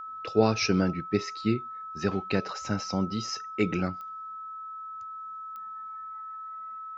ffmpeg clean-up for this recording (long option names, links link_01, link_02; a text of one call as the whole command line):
ffmpeg -i in.wav -af "adeclick=threshold=4,bandreject=frequency=1300:width=30" out.wav